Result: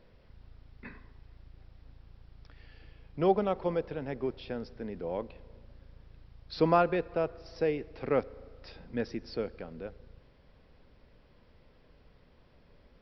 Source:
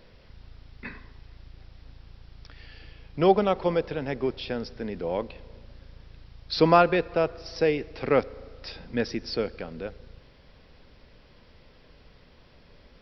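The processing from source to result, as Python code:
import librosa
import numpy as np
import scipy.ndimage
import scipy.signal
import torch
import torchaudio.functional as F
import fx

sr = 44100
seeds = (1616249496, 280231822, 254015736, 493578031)

y = fx.high_shelf(x, sr, hz=2400.0, db=-9.0)
y = y * 10.0 ** (-5.5 / 20.0)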